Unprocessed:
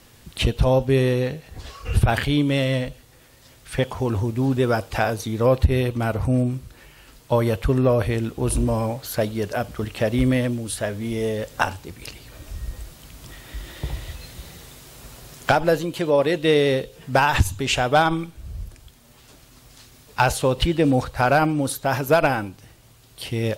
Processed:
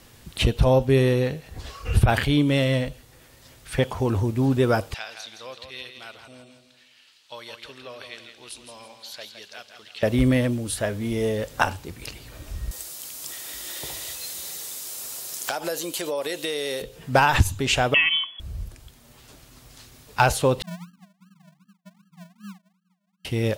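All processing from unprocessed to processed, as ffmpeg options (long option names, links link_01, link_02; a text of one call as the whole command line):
ffmpeg -i in.wav -filter_complex "[0:a]asettb=1/sr,asplit=3[link_01][link_02][link_03];[link_01]atrim=end=4.944[link_04];[link_02]atrim=start=4.94:end=10.03,asetpts=PTS-STARTPTS,afade=type=in:duration=0.004:curve=qsin,afade=type=out:start_time=5.086:duration=0.004:curve=qsin,bandpass=frequency=3800:width_type=q:width=1.8,aecho=1:1:165|330|495|660:0.398|0.151|0.0575|0.0218,atrim=end_sample=224469[link_05];[link_03]atrim=start=10.026[link_06];[link_04][link_05]acrossfade=duration=0.004:curve1=hsin:curve2=qsin[link_07];[link_07][link_06]acrossfade=duration=0.004:curve1=qsin:curve2=hsin,asettb=1/sr,asplit=3[link_08][link_09][link_10];[link_08]atrim=end=12.714[link_11];[link_09]atrim=start=12.71:end=16.82,asetpts=PTS-STARTPTS,afade=type=in:duration=0.004:curve=qsin,afade=type=out:start_time=4.106:duration=0.004:curve=qsin,highpass=frequency=150:poles=1,bass=frequency=250:gain=-13,treble=frequency=4000:gain=14,acompressor=threshold=-25dB:ratio=4:attack=3.2:release=140:knee=1:detection=peak[link_12];[link_10]atrim=start=16.816[link_13];[link_11][link_12]acrossfade=duration=0.004:curve1=hsin:curve2=qsin[link_14];[link_14][link_13]acrossfade=duration=0.004:curve1=qsin:curve2=hsin,asettb=1/sr,asplit=3[link_15][link_16][link_17];[link_15]atrim=end=17.944[link_18];[link_16]atrim=start=17.94:end=18.4,asetpts=PTS-STARTPTS,afade=type=in:duration=0.004:curve=qsin,afade=type=out:start_time=0.456:duration=0.004:curve=qsin,aecho=1:1:2.6:0.59,atrim=end_sample=20286,acompressor=threshold=-18dB:ratio=2:attack=3.2:release=140:knee=1:detection=peak,lowpass=frequency=2900:width_type=q:width=0.5098,lowpass=frequency=2900:width_type=q:width=0.6013,lowpass=frequency=2900:width_type=q:width=0.9,lowpass=frequency=2900:width_type=q:width=2.563,afreqshift=-3400[link_19];[link_17]atrim=start=18.396[link_20];[link_18][link_19]acrossfade=duration=0.004:curve1=hsin:curve2=qsin[link_21];[link_21][link_20]acrossfade=duration=0.004:curve1=qsin:curve2=hsin,asettb=1/sr,asplit=3[link_22][link_23][link_24];[link_22]atrim=end=20.624[link_25];[link_23]atrim=start=20.62:end=23.25,asetpts=PTS-STARTPTS,afade=type=in:duration=0.004:curve=qsin,afade=type=out:start_time=2.626:duration=0.004:curve=qsin,asuperpass=centerf=190:order=8:qfactor=6.2,acrusher=samples=42:mix=1:aa=0.000001:lfo=1:lforange=25.2:lforate=2.6[link_26];[link_24]atrim=start=23.246[link_27];[link_25][link_26]acrossfade=duration=0.004:curve1=hsin:curve2=qsin[link_28];[link_28][link_27]acrossfade=duration=0.004:curve1=qsin:curve2=hsin" out.wav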